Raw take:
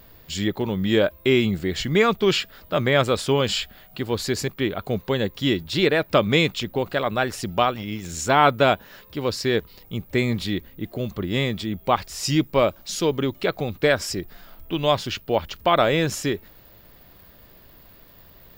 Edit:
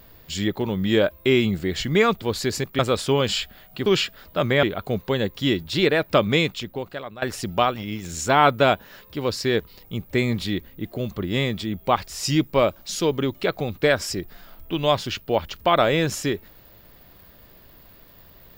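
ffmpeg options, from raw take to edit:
ffmpeg -i in.wav -filter_complex "[0:a]asplit=6[link_01][link_02][link_03][link_04][link_05][link_06];[link_01]atrim=end=2.222[link_07];[link_02]atrim=start=4.058:end=4.632[link_08];[link_03]atrim=start=2.988:end=4.062[link_09];[link_04]atrim=start=2.218:end=2.992[link_10];[link_05]atrim=start=4.628:end=7.22,asetpts=PTS-STARTPTS,afade=type=out:start_time=1.592:duration=1:silence=0.133352[link_11];[link_06]atrim=start=7.22,asetpts=PTS-STARTPTS,afade=type=in:duration=0.004:curve=hsin:silence=0.133352[link_12];[link_07][link_08]acrossfade=duration=0.004:curve1=hsin:curve2=hsin[link_13];[link_13][link_09]acrossfade=duration=0.004:curve1=hsin:curve2=hsin[link_14];[link_14][link_10]acrossfade=duration=0.004:curve1=hsin:curve2=hsin[link_15];[link_11][link_12]concat=n=2:v=0:a=1[link_16];[link_15][link_16]acrossfade=duration=0.004:curve1=hsin:curve2=hsin" out.wav

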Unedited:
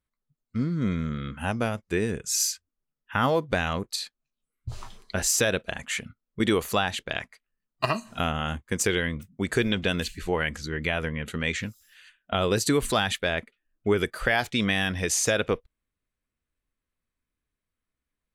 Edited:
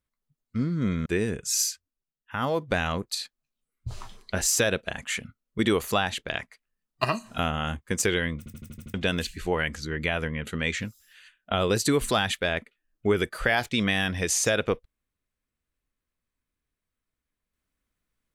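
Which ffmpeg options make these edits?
ffmpeg -i in.wav -filter_complex "[0:a]asplit=11[link_01][link_02][link_03][link_04][link_05][link_06][link_07][link_08][link_09][link_10][link_11];[link_01]atrim=end=1.062[link_12];[link_02]atrim=start=1.868:end=2.92,asetpts=PTS-STARTPTS,afade=type=out:start_time=0.552:duration=0.5:silence=0.375837[link_13];[link_03]atrim=start=2.92:end=3.07,asetpts=PTS-STARTPTS,volume=-8.5dB[link_14];[link_04]atrim=start=3.07:end=9.272,asetpts=PTS-STARTPTS,afade=type=in:duration=0.5:silence=0.375837[link_15];[link_05]atrim=start=9.188:end=9.272[link_16];[link_06]atrim=start=9.188:end=9.272[link_17];[link_07]atrim=start=9.188:end=9.272[link_18];[link_08]atrim=start=9.188:end=9.272[link_19];[link_09]atrim=start=9.188:end=9.272[link_20];[link_10]atrim=start=9.188:end=9.272[link_21];[link_11]atrim=start=9.748[link_22];[link_13][link_14][link_15]concat=n=3:v=0:a=1[link_23];[link_12][link_23]acrossfade=duration=0.004:curve1=hsin:curve2=hsin[link_24];[link_24][link_16]acrossfade=duration=0.004:curve1=hsin:curve2=hsin[link_25];[link_25][link_17]acrossfade=duration=0.004:curve1=hsin:curve2=hsin[link_26];[link_26][link_18]acrossfade=duration=0.004:curve1=hsin:curve2=hsin[link_27];[link_27][link_19]acrossfade=duration=0.004:curve1=hsin:curve2=hsin[link_28];[link_28][link_20]acrossfade=duration=0.004:curve1=hsin:curve2=hsin[link_29];[link_29][link_21]acrossfade=duration=0.004:curve1=hsin:curve2=hsin[link_30];[link_30][link_22]acrossfade=duration=0.004:curve1=hsin:curve2=hsin" out.wav

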